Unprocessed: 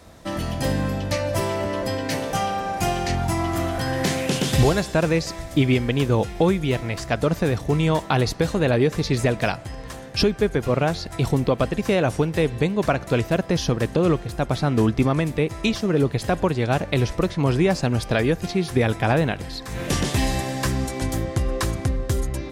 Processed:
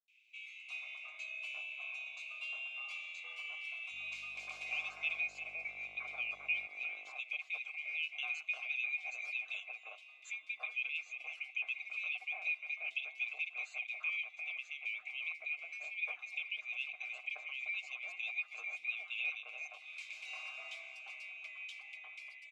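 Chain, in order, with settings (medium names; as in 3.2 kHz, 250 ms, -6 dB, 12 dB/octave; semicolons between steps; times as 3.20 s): split-band scrambler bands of 2 kHz; differentiator; comb 6.5 ms, depth 51%; 3.91–6.66 s: mains buzz 50 Hz, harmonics 33, -41 dBFS -8 dB/octave; vowel filter a; distance through air 89 m; three bands offset in time lows, highs, mids 80/430 ms, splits 270/2000 Hz; trim +4.5 dB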